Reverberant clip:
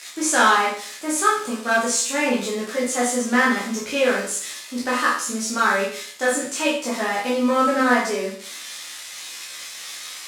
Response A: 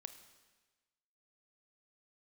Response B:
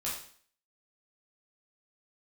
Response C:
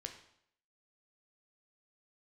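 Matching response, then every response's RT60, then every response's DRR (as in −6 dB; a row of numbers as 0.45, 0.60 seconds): B; 1.3, 0.50, 0.70 seconds; 9.0, −7.0, 4.0 decibels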